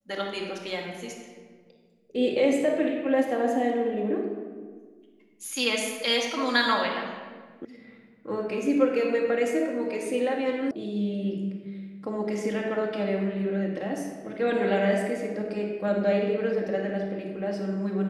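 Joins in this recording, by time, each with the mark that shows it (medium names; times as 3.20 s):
7.65 s: sound stops dead
10.71 s: sound stops dead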